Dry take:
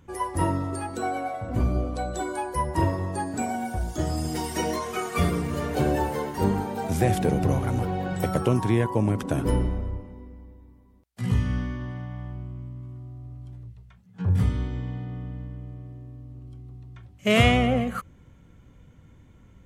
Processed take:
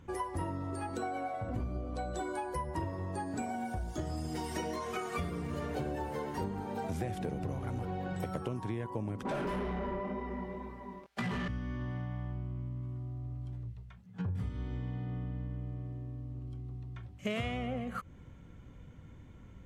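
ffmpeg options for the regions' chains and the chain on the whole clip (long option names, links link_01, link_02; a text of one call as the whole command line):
ffmpeg -i in.wav -filter_complex "[0:a]asettb=1/sr,asplit=3[link_01][link_02][link_03];[link_01]atrim=end=9.254[link_04];[link_02]atrim=start=9.25:end=11.48,asetpts=PTS-STARTPTS,afade=type=in:duration=0.004:curve=qsin,afade=type=out:start_time=2.226:duration=0.004:curve=qsin,flanger=delay=17.5:depth=4.7:speed=2,aecho=1:1:5.1:0.92,atrim=end_sample=98343,asplit=2[link_05][link_06];[link_06]highpass=frequency=720:poles=1,volume=29dB,asoftclip=type=tanh:threshold=-15.5dB[link_07];[link_05][link_07]amix=inputs=2:normalize=0,lowpass=frequency=1700:poles=1,volume=-6dB[link_08];[link_03]atrim=start=11.476[link_09];[link_04][link_08]acrossfade=duration=0.004:curve1=hsin:curve2=qsin[link_10];[link_10][link_09]acrossfade=duration=0.004:curve1=qsin:curve2=hsin,highshelf=frequency=7400:gain=-8.5,acompressor=threshold=-34dB:ratio=6" out.wav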